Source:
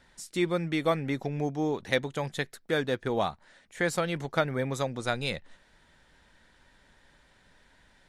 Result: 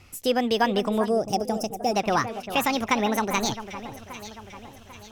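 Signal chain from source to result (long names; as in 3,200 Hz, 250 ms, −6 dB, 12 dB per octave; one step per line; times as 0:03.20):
gliding playback speed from 140% → 176%
parametric band 98 Hz +14 dB 0.85 octaves
in parallel at 0 dB: brickwall limiter −20 dBFS, peak gain reduction 9 dB
on the sum: delay that swaps between a low-pass and a high-pass 397 ms, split 2,000 Hz, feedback 68%, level −11 dB
gain on a spectral selection 0:01.09–0:01.94, 880–4,800 Hz −14 dB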